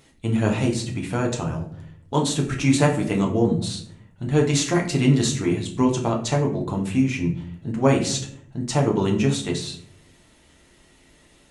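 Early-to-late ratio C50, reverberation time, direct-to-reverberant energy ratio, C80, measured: 8.5 dB, 0.65 s, -0.5 dB, 12.5 dB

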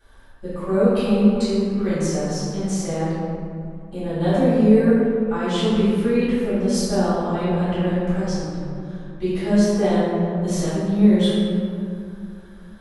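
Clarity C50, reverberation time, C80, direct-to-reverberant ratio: -4.0 dB, 2.6 s, -1.5 dB, -15.0 dB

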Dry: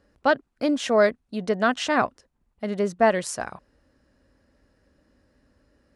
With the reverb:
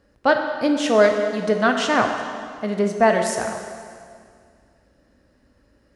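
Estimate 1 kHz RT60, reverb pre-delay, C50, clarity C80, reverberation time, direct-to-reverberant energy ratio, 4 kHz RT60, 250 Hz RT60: 2.0 s, 6 ms, 5.5 dB, 6.5 dB, 2.1 s, 3.5 dB, 1.9 s, 2.2 s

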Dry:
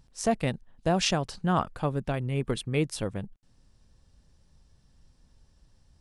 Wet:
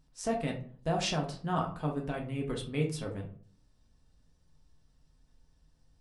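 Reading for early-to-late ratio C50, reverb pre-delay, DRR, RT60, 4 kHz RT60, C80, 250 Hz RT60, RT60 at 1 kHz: 9.0 dB, 3 ms, 0.0 dB, 0.45 s, 0.25 s, 14.0 dB, 0.60 s, 0.45 s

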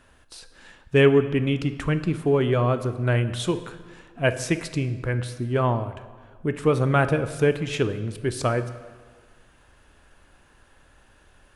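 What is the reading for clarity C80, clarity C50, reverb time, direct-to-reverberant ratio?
14.0 dB, 12.5 dB, 1.5 s, 10.5 dB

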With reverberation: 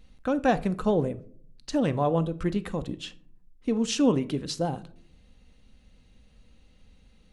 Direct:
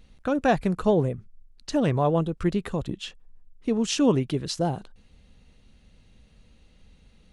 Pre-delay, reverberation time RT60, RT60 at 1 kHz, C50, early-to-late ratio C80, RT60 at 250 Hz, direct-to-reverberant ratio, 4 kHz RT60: 4 ms, 0.55 s, 0.45 s, 18.5 dB, 23.0 dB, 0.90 s, 11.0 dB, 0.25 s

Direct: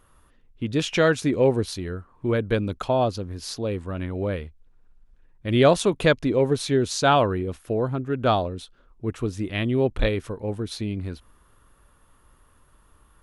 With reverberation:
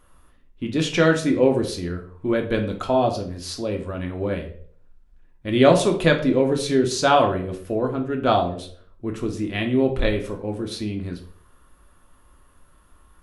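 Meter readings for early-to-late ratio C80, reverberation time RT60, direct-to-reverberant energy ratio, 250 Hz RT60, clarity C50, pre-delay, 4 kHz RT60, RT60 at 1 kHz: 14.5 dB, 0.50 s, 2.5 dB, 0.55 s, 10.0 dB, 3 ms, 0.40 s, 0.45 s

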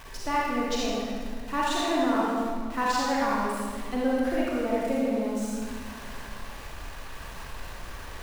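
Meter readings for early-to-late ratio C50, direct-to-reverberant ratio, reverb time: -4.0 dB, -6.0 dB, 1.9 s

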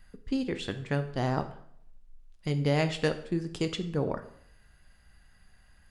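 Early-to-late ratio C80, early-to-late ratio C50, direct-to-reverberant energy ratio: 15.5 dB, 12.5 dB, 8.5 dB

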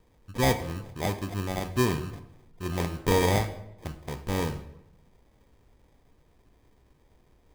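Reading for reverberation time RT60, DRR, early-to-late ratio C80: 0.85 s, 8.0 dB, 14.5 dB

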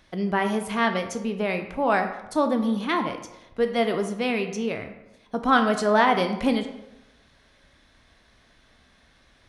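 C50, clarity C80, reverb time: 9.0 dB, 11.0 dB, 0.95 s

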